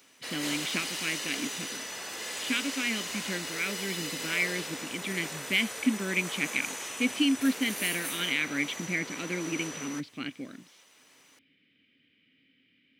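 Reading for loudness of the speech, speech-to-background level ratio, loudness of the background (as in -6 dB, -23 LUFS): -31.5 LUFS, 4.0 dB, -35.5 LUFS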